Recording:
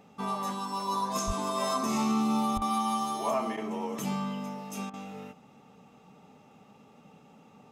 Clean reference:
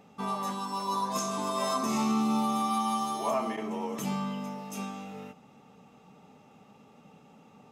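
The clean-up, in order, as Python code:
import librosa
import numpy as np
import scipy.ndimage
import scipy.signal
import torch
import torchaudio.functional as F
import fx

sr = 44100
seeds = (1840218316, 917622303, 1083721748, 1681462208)

y = fx.highpass(x, sr, hz=140.0, slope=24, at=(1.26, 1.38), fade=0.02)
y = fx.highpass(y, sr, hz=140.0, slope=24, at=(2.55, 2.67), fade=0.02)
y = fx.fix_interpolate(y, sr, at_s=(2.58, 4.9), length_ms=35.0)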